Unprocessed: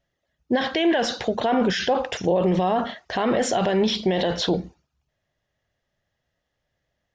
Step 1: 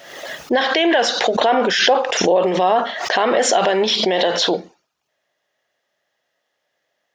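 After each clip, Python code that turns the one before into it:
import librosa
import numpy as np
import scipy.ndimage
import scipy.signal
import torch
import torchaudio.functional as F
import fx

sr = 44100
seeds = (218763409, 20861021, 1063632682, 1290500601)

y = scipy.signal.sosfilt(scipy.signal.butter(2, 430.0, 'highpass', fs=sr, output='sos'), x)
y = fx.pre_swell(y, sr, db_per_s=54.0)
y = F.gain(torch.from_numpy(y), 7.5).numpy()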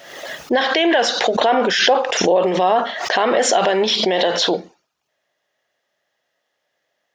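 y = x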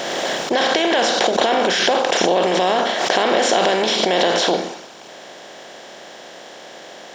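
y = fx.bin_compress(x, sr, power=0.4)
y = F.gain(torch.from_numpy(y), -6.5).numpy()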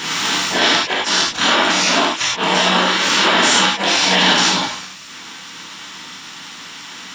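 y = fx.spec_gate(x, sr, threshold_db=-10, keep='weak')
y = fx.gate_flip(y, sr, shuts_db=-8.0, range_db=-35)
y = fx.rev_gated(y, sr, seeds[0], gate_ms=130, shape='flat', drr_db=-6.0)
y = F.gain(torch.from_numpy(y), 2.0).numpy()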